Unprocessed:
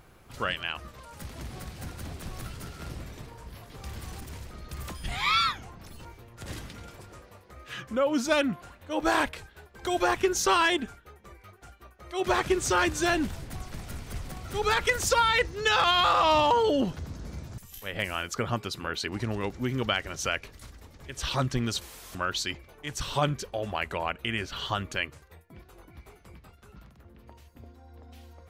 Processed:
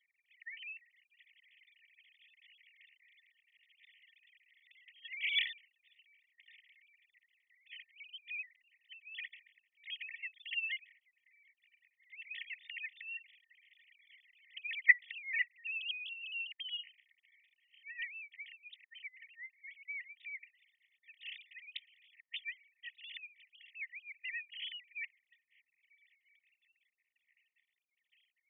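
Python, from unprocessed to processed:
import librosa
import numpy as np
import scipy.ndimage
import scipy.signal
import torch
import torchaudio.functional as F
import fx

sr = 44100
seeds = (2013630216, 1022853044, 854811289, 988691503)

y = fx.sine_speech(x, sr)
y = fx.brickwall_highpass(y, sr, low_hz=1800.0)
y = F.gain(torch.from_numpy(y), -3.5).numpy()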